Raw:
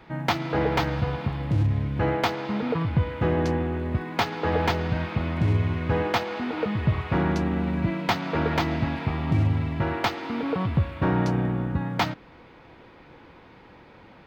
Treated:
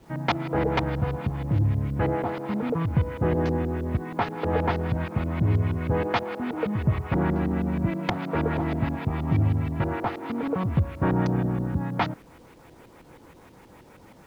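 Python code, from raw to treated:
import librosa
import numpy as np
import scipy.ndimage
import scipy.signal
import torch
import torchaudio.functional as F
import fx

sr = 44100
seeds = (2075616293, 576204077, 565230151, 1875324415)

y = fx.filter_lfo_lowpass(x, sr, shape='saw_up', hz=6.3, low_hz=370.0, high_hz=5500.0, q=0.75)
y = fx.quant_dither(y, sr, seeds[0], bits=10, dither='none')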